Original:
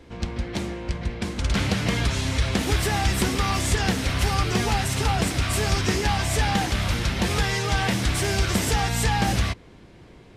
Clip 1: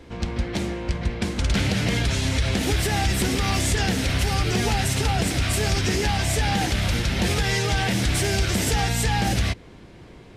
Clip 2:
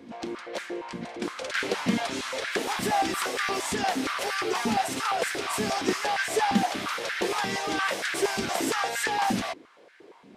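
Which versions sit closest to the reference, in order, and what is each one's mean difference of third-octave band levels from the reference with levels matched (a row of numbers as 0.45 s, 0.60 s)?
1, 2; 1.5 dB, 6.5 dB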